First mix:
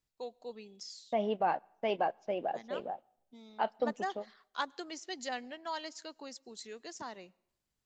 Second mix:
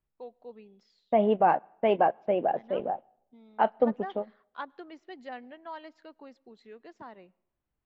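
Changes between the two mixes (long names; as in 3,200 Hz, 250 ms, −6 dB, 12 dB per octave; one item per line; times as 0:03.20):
second voice +10.0 dB
master: add high-frequency loss of the air 500 metres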